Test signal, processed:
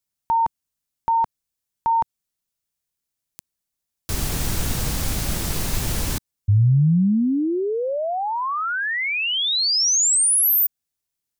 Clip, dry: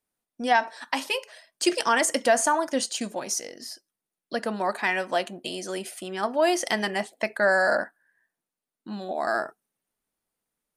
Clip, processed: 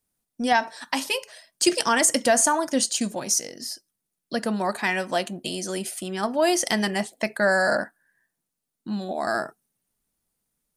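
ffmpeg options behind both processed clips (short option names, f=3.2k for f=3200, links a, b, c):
-af "bass=f=250:g=10,treble=f=4k:g=7"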